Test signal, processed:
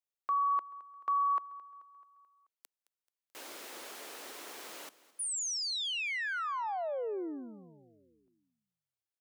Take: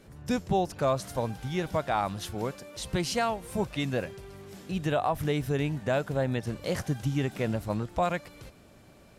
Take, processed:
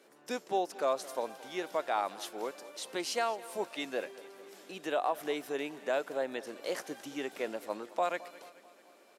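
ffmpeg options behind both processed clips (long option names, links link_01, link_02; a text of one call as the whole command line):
ffmpeg -i in.wav -filter_complex "[0:a]highpass=frequency=320:width=0.5412,highpass=frequency=320:width=1.3066,asplit=2[link_01][link_02];[link_02]aecho=0:1:217|434|651|868|1085:0.112|0.0617|0.0339|0.0187|0.0103[link_03];[link_01][link_03]amix=inputs=2:normalize=0,volume=-3.5dB" out.wav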